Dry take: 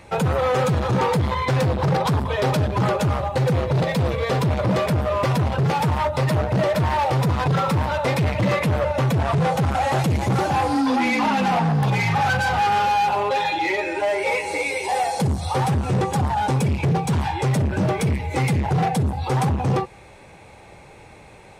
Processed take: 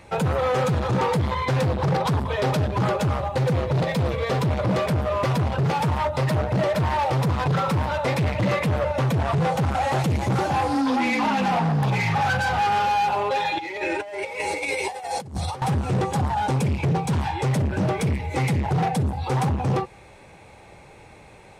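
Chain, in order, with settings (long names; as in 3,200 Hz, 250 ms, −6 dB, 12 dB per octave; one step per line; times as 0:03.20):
0:13.57–0:15.62: compressor whose output falls as the input rises −26 dBFS, ratio −0.5
highs frequency-modulated by the lows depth 0.12 ms
level −2 dB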